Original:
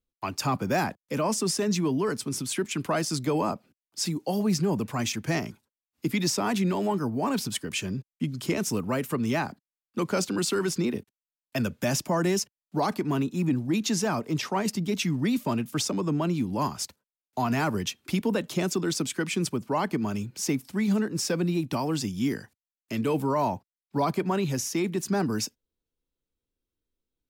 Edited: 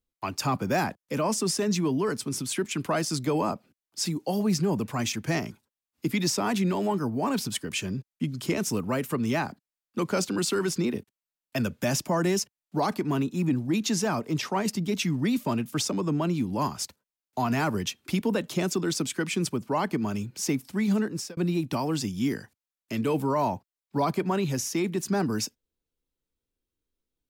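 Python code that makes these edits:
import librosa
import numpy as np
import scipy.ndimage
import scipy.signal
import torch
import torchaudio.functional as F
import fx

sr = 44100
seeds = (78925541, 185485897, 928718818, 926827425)

y = fx.edit(x, sr, fx.fade_out_span(start_s=21.08, length_s=0.29), tone=tone)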